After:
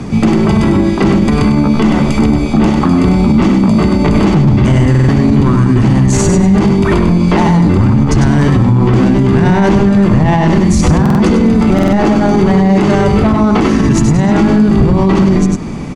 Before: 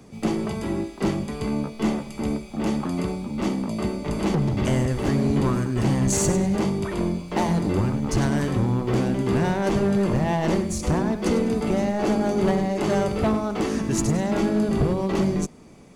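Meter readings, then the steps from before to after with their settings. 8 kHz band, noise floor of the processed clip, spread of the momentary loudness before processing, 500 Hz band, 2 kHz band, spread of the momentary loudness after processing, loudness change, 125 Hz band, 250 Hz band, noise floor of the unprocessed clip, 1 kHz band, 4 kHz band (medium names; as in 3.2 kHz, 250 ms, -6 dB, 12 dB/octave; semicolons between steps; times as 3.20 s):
+6.5 dB, -13 dBFS, 6 LU, +10.5 dB, +13.0 dB, 2 LU, +14.0 dB, +15.5 dB, +14.5 dB, -39 dBFS, +13.0 dB, +11.0 dB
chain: treble shelf 2.3 kHz -9.5 dB; compression, threshold -28 dBFS, peak gain reduction 10 dB; low-pass 8 kHz 12 dB/octave; peaking EQ 530 Hz -8 dB 1.2 oct; on a send: delay 99 ms -6 dB; on the sum: buffer glitch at 4.90/11.01/11.74 s, samples 2048, times 3; loudness maximiser +29 dB; trim -1 dB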